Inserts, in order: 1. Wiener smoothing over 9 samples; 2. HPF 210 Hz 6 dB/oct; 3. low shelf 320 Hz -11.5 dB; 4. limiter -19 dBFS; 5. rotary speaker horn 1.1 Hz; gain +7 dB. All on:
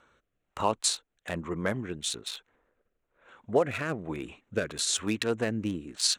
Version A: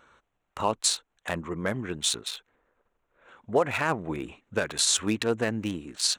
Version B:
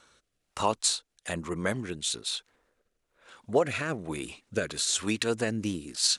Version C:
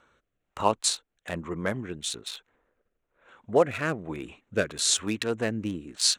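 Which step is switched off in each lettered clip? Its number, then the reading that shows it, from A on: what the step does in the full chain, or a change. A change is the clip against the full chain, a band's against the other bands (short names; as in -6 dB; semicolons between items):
5, crest factor change -2.5 dB; 1, momentary loudness spread change -1 LU; 4, crest factor change +3.5 dB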